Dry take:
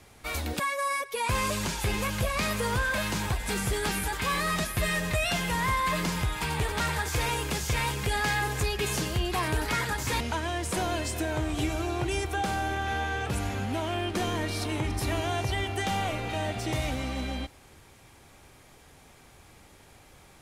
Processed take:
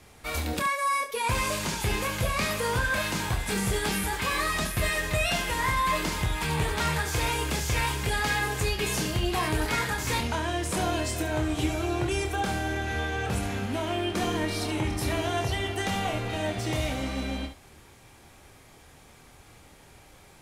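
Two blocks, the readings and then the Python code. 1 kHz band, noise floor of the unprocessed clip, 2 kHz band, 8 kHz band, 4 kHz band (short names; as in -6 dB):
+1.0 dB, -55 dBFS, +1.0 dB, +1.5 dB, +1.5 dB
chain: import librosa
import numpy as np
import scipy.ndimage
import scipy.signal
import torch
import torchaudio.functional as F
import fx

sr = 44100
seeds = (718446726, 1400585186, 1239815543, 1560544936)

y = fx.room_early_taps(x, sr, ms=(26, 71), db=(-6.0, -9.5))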